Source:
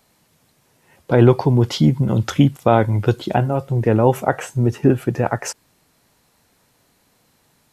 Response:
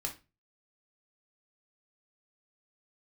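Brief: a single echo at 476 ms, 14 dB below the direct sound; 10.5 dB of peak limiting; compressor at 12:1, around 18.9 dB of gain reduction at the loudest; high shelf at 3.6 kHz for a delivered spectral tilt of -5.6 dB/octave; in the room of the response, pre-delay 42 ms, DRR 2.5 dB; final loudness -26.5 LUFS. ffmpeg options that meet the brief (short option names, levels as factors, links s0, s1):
-filter_complex "[0:a]highshelf=f=3600:g=8,acompressor=threshold=0.0447:ratio=12,alimiter=level_in=1.19:limit=0.0631:level=0:latency=1,volume=0.841,aecho=1:1:476:0.2,asplit=2[s0][s1];[1:a]atrim=start_sample=2205,adelay=42[s2];[s1][s2]afir=irnorm=-1:irlink=0,volume=0.668[s3];[s0][s3]amix=inputs=2:normalize=0,volume=2.11"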